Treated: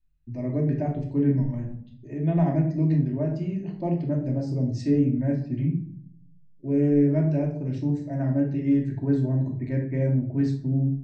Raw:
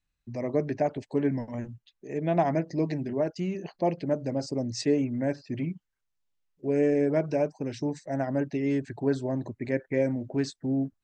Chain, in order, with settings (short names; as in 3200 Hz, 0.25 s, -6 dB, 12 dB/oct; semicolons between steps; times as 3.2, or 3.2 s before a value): tone controls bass +14 dB, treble -6 dB; shoebox room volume 830 m³, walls furnished, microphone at 2.7 m; gain -9 dB